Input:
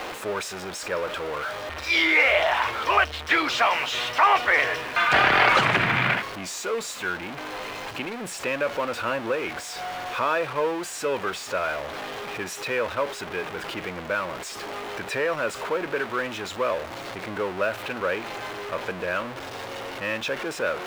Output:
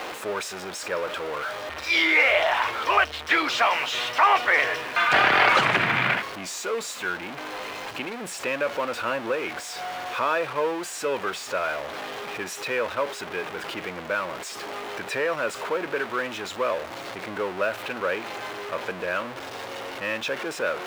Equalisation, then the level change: low shelf 100 Hz -11 dB; 0.0 dB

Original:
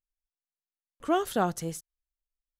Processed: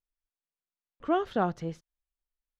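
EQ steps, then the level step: air absorption 250 m; 0.0 dB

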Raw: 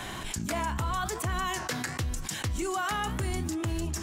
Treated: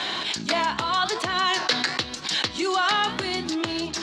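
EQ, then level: HPF 280 Hz 12 dB/oct; synth low-pass 4200 Hz, resonance Q 3.7; +7.5 dB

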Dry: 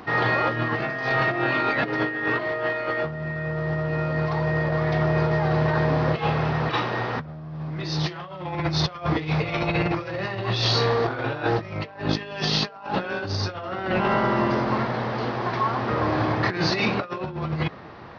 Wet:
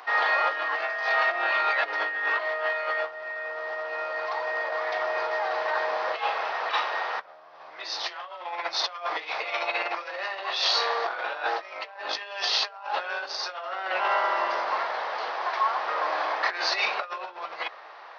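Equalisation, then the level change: HPF 620 Hz 24 dB/oct; 0.0 dB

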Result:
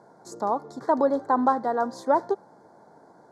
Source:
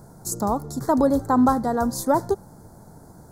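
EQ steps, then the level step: BPF 400–3000 Hz; notch 1300 Hz, Q 13; 0.0 dB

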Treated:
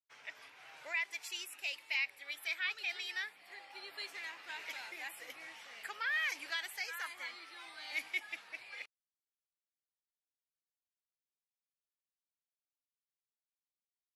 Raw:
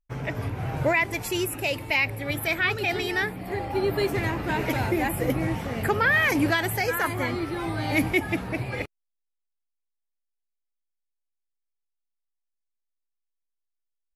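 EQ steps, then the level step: HPF 1100 Hz 6 dB/oct; LPF 4200 Hz 12 dB/oct; differentiator; 0.0 dB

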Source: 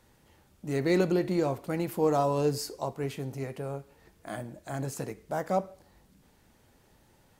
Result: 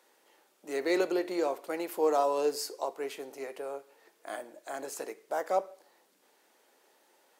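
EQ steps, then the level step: HPF 360 Hz 24 dB/oct; 0.0 dB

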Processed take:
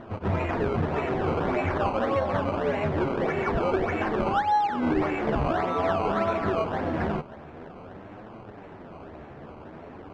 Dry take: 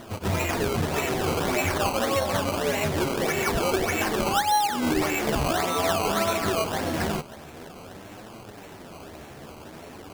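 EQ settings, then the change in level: LPF 1700 Hz 12 dB/oct; 0.0 dB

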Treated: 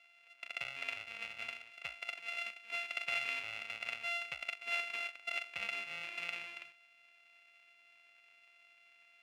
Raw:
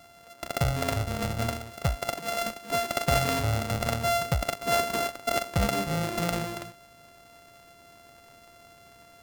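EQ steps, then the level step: band-pass 2500 Hz, Q 7.5; +4.5 dB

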